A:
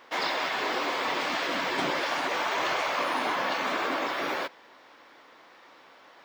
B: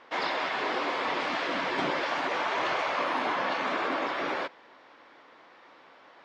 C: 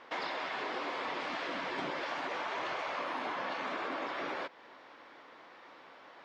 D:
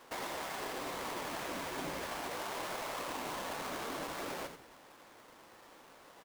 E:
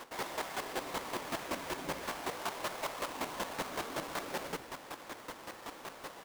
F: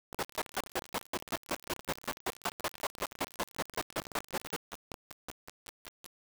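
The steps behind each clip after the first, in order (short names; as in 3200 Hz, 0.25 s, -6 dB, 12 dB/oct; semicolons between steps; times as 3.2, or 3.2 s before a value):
LPF 6900 Hz 12 dB/oct; high shelf 4600 Hz -8.5 dB
compressor 2.5:1, threshold -38 dBFS, peak gain reduction 9 dB
half-waves squared off; frequency-shifting echo 87 ms, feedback 35%, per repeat -110 Hz, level -8.5 dB; gain -7.5 dB
reverse; compressor 5:1, threshold -49 dBFS, peak gain reduction 11 dB; reverse; chopper 5.3 Hz, depth 65%, duty 20%; gain +16 dB
requantised 6-bit, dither none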